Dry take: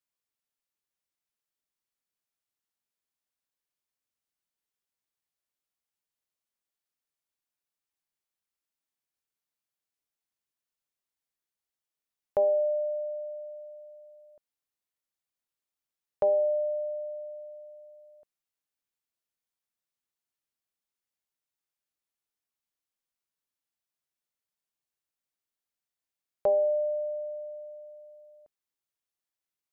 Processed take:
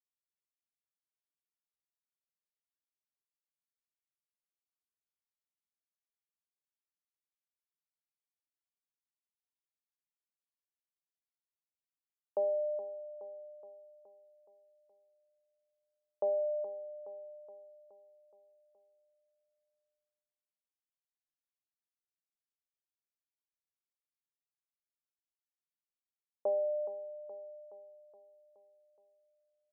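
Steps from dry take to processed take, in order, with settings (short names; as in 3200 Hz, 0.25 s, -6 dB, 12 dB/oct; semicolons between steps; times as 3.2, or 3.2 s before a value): expander -41 dBFS; LPF 1000 Hz 24 dB/oct; feedback echo 0.421 s, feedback 57%, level -11 dB; gain -7.5 dB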